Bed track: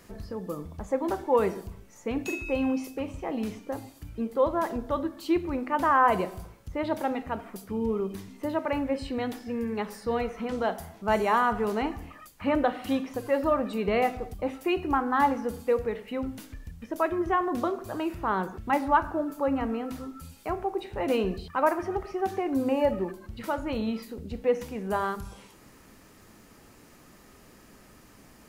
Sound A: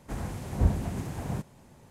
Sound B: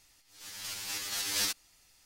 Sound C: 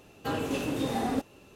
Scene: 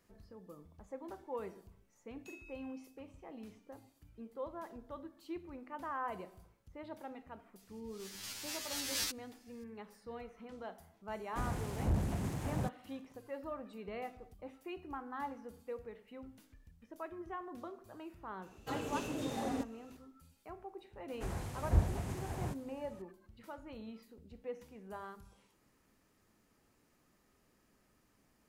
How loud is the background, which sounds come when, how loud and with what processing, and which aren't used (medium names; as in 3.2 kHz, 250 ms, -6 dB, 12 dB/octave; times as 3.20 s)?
bed track -18.5 dB
7.59 s: add B -6 dB
11.27 s: add A -14.5 dB + waveshaping leveller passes 3
18.42 s: add C -9 dB + peaking EQ 6.7 kHz +5.5 dB 0.56 oct
21.12 s: add A -4 dB + peaking EQ 210 Hz -6 dB 1.2 oct